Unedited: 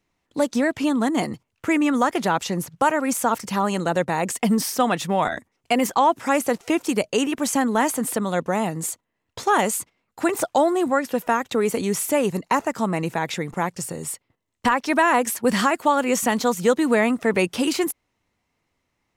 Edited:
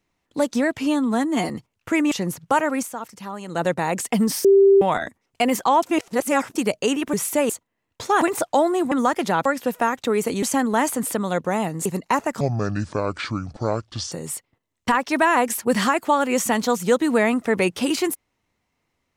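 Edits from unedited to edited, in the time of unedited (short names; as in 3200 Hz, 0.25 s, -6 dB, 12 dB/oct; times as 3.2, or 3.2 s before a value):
0.79–1.26 stretch 1.5×
1.88–2.42 move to 10.93
3.06–3.92 dip -11 dB, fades 0.14 s
4.75–5.12 bleep 393 Hz -9.5 dBFS
6.13–6.86 reverse
7.44–8.87 swap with 11.9–12.26
9.59–10.23 cut
12.81–13.89 speed 63%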